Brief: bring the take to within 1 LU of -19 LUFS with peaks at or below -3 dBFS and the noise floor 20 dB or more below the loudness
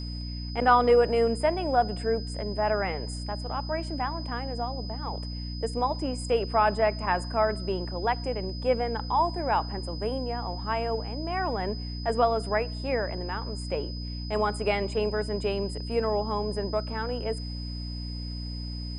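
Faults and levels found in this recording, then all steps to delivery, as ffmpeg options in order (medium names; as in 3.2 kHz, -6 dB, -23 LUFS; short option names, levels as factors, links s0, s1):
hum 60 Hz; highest harmonic 300 Hz; hum level -33 dBFS; steady tone 5 kHz; tone level -41 dBFS; loudness -28.5 LUFS; peak level -7.5 dBFS; loudness target -19.0 LUFS
-> -af "bandreject=f=60:t=h:w=6,bandreject=f=120:t=h:w=6,bandreject=f=180:t=h:w=6,bandreject=f=240:t=h:w=6,bandreject=f=300:t=h:w=6"
-af "bandreject=f=5000:w=30"
-af "volume=2.99,alimiter=limit=0.708:level=0:latency=1"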